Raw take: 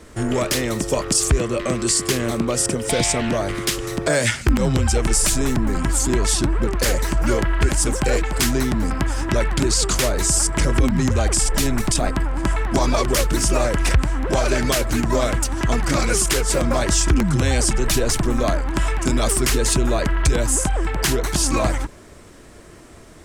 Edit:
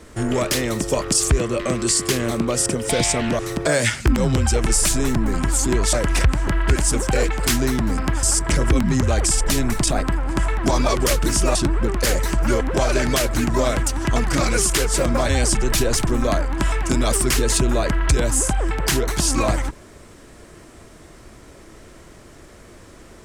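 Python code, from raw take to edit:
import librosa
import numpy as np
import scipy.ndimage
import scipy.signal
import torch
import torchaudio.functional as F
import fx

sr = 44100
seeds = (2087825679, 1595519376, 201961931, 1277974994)

y = fx.edit(x, sr, fx.cut(start_s=3.39, length_s=0.41),
    fx.swap(start_s=6.34, length_s=1.06, other_s=13.63, other_length_s=0.54),
    fx.cut(start_s=9.16, length_s=1.15),
    fx.cut(start_s=16.85, length_s=0.6), tone=tone)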